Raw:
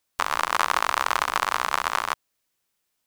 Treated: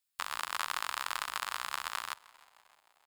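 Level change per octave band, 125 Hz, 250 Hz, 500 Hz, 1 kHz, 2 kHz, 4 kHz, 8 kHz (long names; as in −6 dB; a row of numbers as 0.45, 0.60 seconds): below −15 dB, −19.5 dB, −19.0 dB, −14.0 dB, −11.5 dB, −7.5 dB, −7.5 dB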